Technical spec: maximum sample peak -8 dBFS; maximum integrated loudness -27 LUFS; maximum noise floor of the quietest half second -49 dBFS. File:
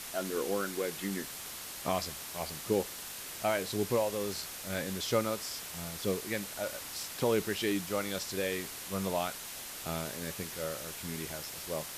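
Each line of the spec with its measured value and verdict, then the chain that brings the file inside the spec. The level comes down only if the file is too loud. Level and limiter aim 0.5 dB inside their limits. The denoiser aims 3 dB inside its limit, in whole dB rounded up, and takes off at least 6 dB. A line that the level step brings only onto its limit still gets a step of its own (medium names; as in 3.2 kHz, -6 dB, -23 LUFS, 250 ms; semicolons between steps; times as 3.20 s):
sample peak -16.5 dBFS: pass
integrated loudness -34.5 LUFS: pass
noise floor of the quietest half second -43 dBFS: fail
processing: noise reduction 9 dB, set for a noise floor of -43 dBFS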